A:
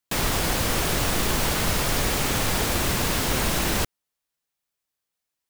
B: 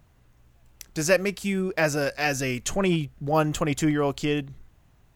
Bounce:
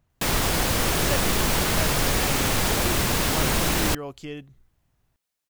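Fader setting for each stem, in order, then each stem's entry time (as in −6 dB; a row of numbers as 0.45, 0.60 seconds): +1.0, −10.5 decibels; 0.10, 0.00 seconds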